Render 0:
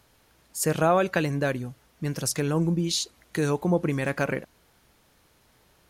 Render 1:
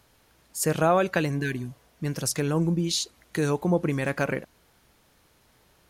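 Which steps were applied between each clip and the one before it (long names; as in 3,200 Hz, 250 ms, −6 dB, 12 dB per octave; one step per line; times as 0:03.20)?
healed spectral selection 0:01.42–0:01.94, 440–1,500 Hz both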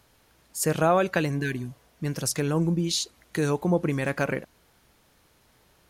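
no processing that can be heard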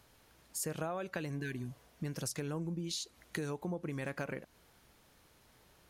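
downward compressor 6 to 1, threshold −33 dBFS, peak gain reduction 15.5 dB
level −3 dB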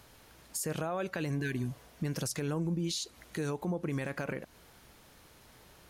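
brickwall limiter −32.5 dBFS, peak gain reduction 10.5 dB
level +7 dB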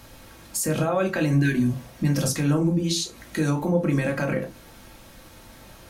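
convolution reverb RT60 0.25 s, pre-delay 3 ms, DRR 0.5 dB
level +7 dB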